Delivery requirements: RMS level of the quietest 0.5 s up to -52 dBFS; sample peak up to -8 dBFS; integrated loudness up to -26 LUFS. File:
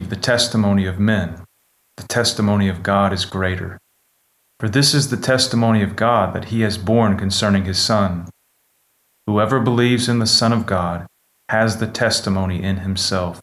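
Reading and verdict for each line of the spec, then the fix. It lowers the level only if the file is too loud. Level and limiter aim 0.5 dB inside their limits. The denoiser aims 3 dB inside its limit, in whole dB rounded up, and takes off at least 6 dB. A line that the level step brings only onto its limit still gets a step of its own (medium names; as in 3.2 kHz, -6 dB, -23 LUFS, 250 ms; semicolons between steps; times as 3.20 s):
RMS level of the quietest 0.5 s -63 dBFS: pass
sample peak -3.0 dBFS: fail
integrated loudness -17.5 LUFS: fail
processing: trim -9 dB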